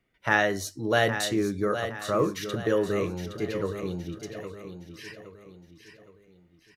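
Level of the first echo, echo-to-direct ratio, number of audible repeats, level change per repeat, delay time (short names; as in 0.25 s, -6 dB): -9.5 dB, -8.5 dB, 4, -7.5 dB, 0.816 s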